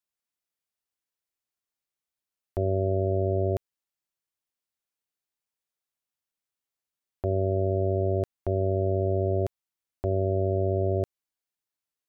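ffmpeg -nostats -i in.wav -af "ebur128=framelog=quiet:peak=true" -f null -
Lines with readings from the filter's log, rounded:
Integrated loudness:
  I:         -27.4 LUFS
  Threshold: -37.5 LUFS
Loudness range:
  LRA:         7.8 LU
  Threshold: -50.0 LUFS
  LRA low:   -35.3 LUFS
  LRA high:  -27.5 LUFS
True peak:
  Peak:      -17.5 dBFS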